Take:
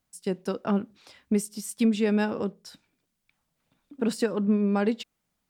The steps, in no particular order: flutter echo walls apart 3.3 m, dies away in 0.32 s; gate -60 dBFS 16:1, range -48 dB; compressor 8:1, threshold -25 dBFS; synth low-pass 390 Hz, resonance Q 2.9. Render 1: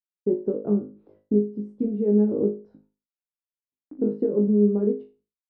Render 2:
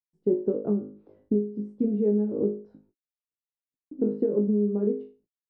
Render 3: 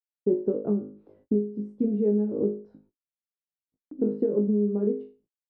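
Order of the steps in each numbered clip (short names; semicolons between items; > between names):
compressor > synth low-pass > gate > flutter echo; flutter echo > compressor > gate > synth low-pass; flutter echo > compressor > synth low-pass > gate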